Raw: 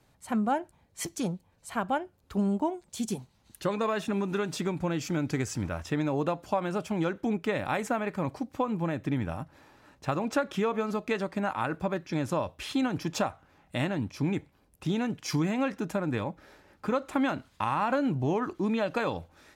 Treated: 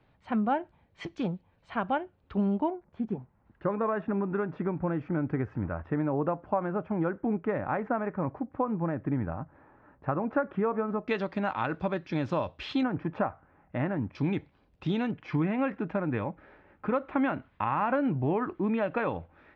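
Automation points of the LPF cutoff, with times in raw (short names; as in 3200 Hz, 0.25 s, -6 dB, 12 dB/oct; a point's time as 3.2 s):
LPF 24 dB/oct
3300 Hz
from 2.7 s 1700 Hz
from 11.08 s 4300 Hz
from 12.83 s 1900 Hz
from 14.15 s 4100 Hz
from 15.11 s 2500 Hz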